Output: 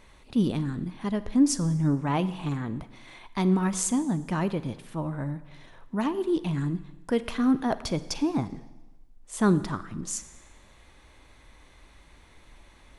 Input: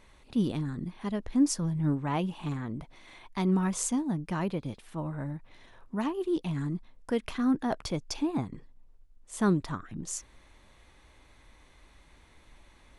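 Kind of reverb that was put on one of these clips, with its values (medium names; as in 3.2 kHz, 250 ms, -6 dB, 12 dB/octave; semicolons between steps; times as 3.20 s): Schroeder reverb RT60 1.1 s, DRR 14.5 dB; trim +3.5 dB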